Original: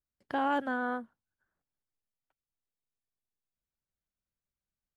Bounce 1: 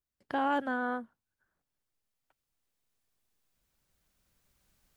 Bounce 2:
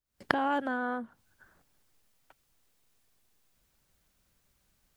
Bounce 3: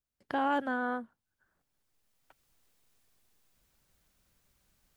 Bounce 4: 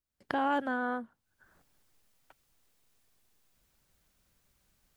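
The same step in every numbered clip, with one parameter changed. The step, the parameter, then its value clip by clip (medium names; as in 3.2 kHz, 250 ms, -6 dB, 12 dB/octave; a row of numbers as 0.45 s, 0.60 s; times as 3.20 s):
recorder AGC, rising by: 5.6 dB/s, 87 dB/s, 14 dB/s, 35 dB/s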